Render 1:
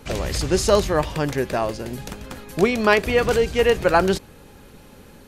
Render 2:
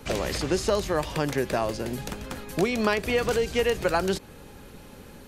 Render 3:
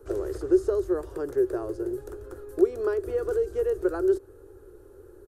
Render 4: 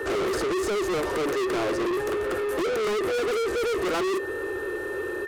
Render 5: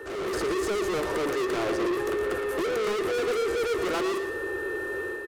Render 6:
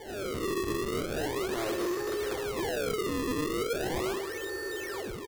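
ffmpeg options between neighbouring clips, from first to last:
ffmpeg -i in.wav -filter_complex "[0:a]acrossover=split=170|3600[link_01][link_02][link_03];[link_01]acompressor=threshold=-36dB:ratio=4[link_04];[link_02]acompressor=threshold=-22dB:ratio=4[link_05];[link_03]acompressor=threshold=-36dB:ratio=4[link_06];[link_04][link_05][link_06]amix=inputs=3:normalize=0" out.wav
ffmpeg -i in.wav -af "firequalizer=gain_entry='entry(100,0);entry(190,-30);entry(360,13);entry(570,-5);entry(890,-11);entry(1400,-3);entry(2200,-24);entry(8900,-8)':delay=0.05:min_phase=1,volume=-4.5dB" out.wav
ffmpeg -i in.wav -filter_complex "[0:a]asplit=2[link_01][link_02];[link_02]highpass=frequency=720:poles=1,volume=33dB,asoftclip=type=tanh:threshold=-9dB[link_03];[link_01][link_03]amix=inputs=2:normalize=0,lowpass=frequency=3800:poles=1,volume=-6dB,aeval=exprs='val(0)+0.0224*sin(2*PI*1800*n/s)':channel_layout=same,asoftclip=type=tanh:threshold=-24.5dB" out.wav
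ffmpeg -i in.wav -af "dynaudnorm=framelen=100:gausssize=5:maxgain=7dB,aecho=1:1:115|230|345|460:0.355|0.138|0.054|0.021,volume=-9dB" out.wav
ffmpeg -i in.wav -af "acrusher=samples=33:mix=1:aa=0.000001:lfo=1:lforange=52.8:lforate=0.38,volume=-4.5dB" out.wav

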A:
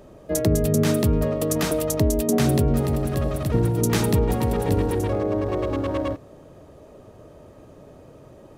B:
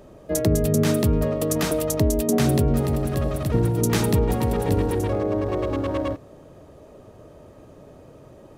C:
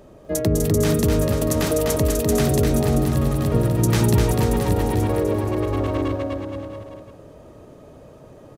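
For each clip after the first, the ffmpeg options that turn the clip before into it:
ffmpeg -i in.wav -af anull out.wav
ffmpeg -i in.wav -af "aecho=1:1:250|475|677.5|859.8|1024:0.631|0.398|0.251|0.158|0.1" out.wav

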